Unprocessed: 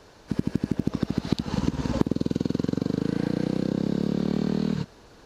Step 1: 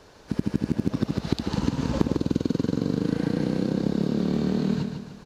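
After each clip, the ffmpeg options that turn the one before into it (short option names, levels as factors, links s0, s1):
-af "aecho=1:1:148|296|444|592|740:0.473|0.199|0.0835|0.0351|0.0147"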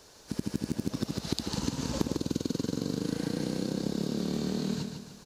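-af "bass=f=250:g=-2,treble=f=4000:g=14,volume=0.501"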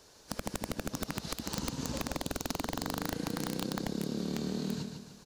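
-af "aeval=exprs='(mod(10*val(0)+1,2)-1)/10':c=same,volume=0.668"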